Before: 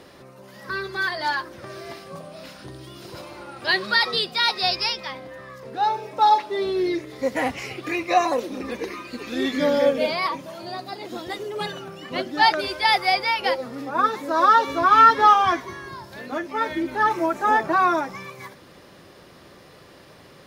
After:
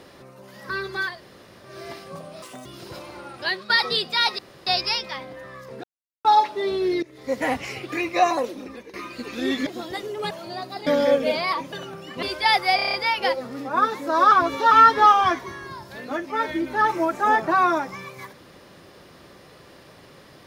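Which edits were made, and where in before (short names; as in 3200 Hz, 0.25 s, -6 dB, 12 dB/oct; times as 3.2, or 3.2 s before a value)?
1.1–1.7 room tone, crossfade 0.24 s
2.42–2.88 speed 195%
3.52–3.92 fade out, to -13.5 dB
4.61 insert room tone 0.28 s
5.78–6.19 mute
6.97–7.33 fade in linear, from -17.5 dB
8.24–8.88 fade out, to -17.5 dB
9.61–10.47 swap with 11.03–11.67
12.17–12.62 cut
13.15 stutter 0.03 s, 7 plays
14.53–14.93 reverse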